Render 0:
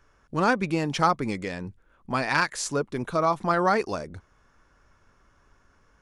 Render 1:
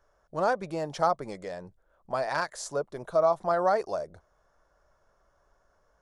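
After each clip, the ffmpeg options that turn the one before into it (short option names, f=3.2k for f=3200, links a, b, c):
-af "equalizer=f=100:t=o:w=0.67:g=-7,equalizer=f=250:t=o:w=0.67:g=-9,equalizer=f=630:t=o:w=0.67:g=12,equalizer=f=2.5k:t=o:w=0.67:g=-9,volume=-7dB"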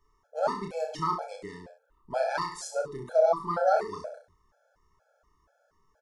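-af "aecho=1:1:30|63|99.3|139.2|183.2:0.631|0.398|0.251|0.158|0.1,afftfilt=real='re*gt(sin(2*PI*2.1*pts/sr)*(1-2*mod(floor(b*sr/1024/440),2)),0)':imag='im*gt(sin(2*PI*2.1*pts/sr)*(1-2*mod(floor(b*sr/1024/440),2)),0)':win_size=1024:overlap=0.75"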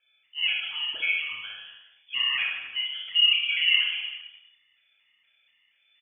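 -af "tiltshelf=f=740:g=-3.5,aecho=1:1:60|129|208.4|299.6|404.5:0.631|0.398|0.251|0.158|0.1,lowpass=f=3k:t=q:w=0.5098,lowpass=f=3k:t=q:w=0.6013,lowpass=f=3k:t=q:w=0.9,lowpass=f=3k:t=q:w=2.563,afreqshift=-3500"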